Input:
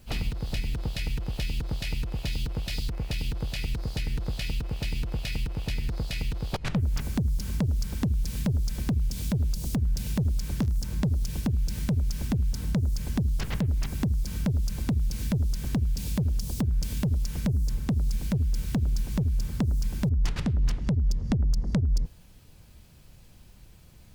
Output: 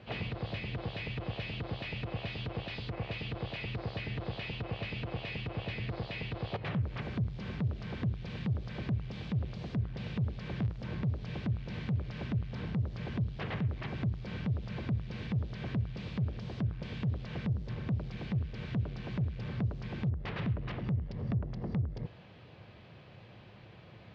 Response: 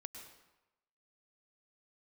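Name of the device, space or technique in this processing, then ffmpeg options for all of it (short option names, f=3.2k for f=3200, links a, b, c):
overdrive pedal into a guitar cabinet: -filter_complex "[0:a]asplit=2[a][b];[b]highpass=f=720:p=1,volume=29dB,asoftclip=type=tanh:threshold=-15.5dB[c];[a][c]amix=inputs=2:normalize=0,lowpass=f=1k:p=1,volume=-6dB,highpass=83,equalizer=f=110:t=q:w=4:g=9,equalizer=f=260:t=q:w=4:g=-5,equalizer=f=910:t=q:w=4:g=-4,equalizer=f=1.4k:t=q:w=4:g=-4,lowpass=f=3.9k:w=0.5412,lowpass=f=3.9k:w=1.3066,volume=-8dB"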